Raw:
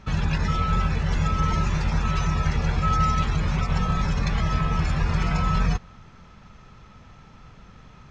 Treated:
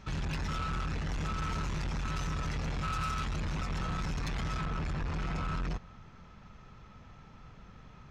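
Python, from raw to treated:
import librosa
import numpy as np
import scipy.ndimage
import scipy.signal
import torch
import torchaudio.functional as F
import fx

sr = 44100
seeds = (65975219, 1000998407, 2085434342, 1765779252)

y = fx.high_shelf(x, sr, hz=3600.0, db=fx.steps((0.0, 4.5), (4.65, -4.0)))
y = 10.0 ** (-26.5 / 20.0) * np.tanh(y / 10.0 ** (-26.5 / 20.0))
y = F.gain(torch.from_numpy(y), -4.5).numpy()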